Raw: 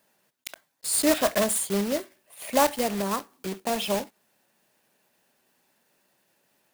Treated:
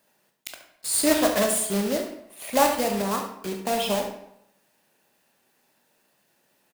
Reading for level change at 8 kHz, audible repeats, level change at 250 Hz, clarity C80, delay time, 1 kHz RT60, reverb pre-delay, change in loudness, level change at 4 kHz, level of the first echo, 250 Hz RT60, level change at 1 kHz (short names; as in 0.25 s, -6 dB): +1.5 dB, 1, +2.0 dB, 9.0 dB, 72 ms, 0.80 s, 14 ms, +1.5 dB, +2.0 dB, -11.5 dB, 0.70 s, +2.5 dB